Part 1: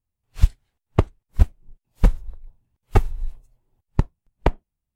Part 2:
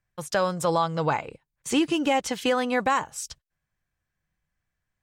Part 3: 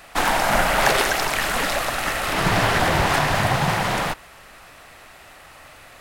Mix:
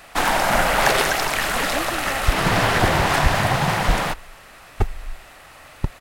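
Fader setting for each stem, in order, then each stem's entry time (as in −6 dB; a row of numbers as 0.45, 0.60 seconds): −4.5, −10.0, +0.5 decibels; 1.85, 0.00, 0.00 seconds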